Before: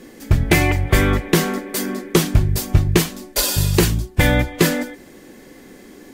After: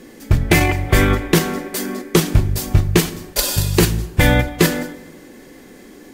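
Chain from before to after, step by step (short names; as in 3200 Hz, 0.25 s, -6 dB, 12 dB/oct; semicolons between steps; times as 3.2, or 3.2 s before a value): in parallel at 0 dB: level quantiser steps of 16 dB; on the sum: plate-style reverb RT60 1.3 s, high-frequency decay 0.7×, DRR 13.5 dB; gain -3 dB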